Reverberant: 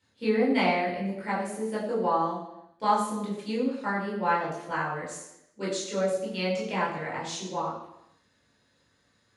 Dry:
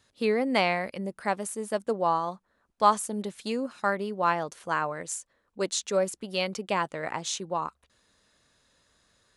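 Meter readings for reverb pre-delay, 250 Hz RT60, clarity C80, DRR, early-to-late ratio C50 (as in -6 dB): 14 ms, 0.85 s, 6.5 dB, -7.5 dB, 4.0 dB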